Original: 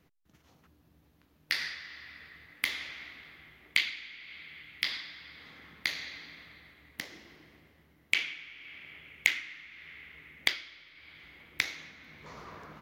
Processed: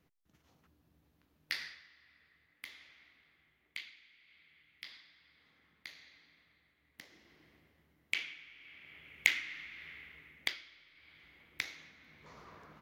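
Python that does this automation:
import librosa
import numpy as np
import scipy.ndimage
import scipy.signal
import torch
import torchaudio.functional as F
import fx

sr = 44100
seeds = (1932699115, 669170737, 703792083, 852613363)

y = fx.gain(x, sr, db=fx.line((1.53, -6.5), (1.95, -17.5), (6.75, -17.5), (7.47, -7.5), (8.78, -7.5), (9.62, 2.0), (10.5, -8.0)))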